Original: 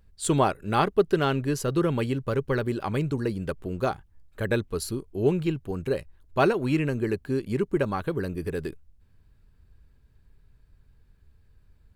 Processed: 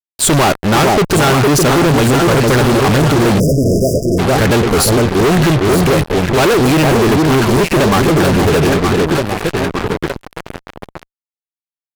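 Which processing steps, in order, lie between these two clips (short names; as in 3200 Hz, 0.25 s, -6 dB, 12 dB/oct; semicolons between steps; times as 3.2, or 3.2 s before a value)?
echo with dull and thin repeats by turns 0.458 s, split 820 Hz, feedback 66%, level -6 dB; fuzz box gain 45 dB, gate -41 dBFS; spectral delete 3.4–4.18, 690–4800 Hz; gain +4 dB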